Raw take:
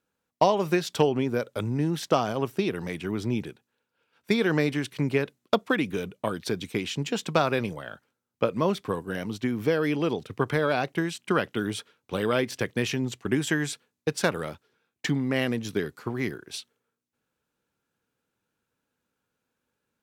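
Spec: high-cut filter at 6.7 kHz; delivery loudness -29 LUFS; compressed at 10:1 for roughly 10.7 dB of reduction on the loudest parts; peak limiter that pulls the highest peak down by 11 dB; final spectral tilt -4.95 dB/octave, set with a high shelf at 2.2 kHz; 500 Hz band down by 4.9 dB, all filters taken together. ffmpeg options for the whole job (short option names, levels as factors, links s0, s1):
-af "lowpass=6700,equalizer=f=500:t=o:g=-6,highshelf=f=2200:g=-4,acompressor=threshold=0.0282:ratio=10,volume=3.16,alimiter=limit=0.15:level=0:latency=1"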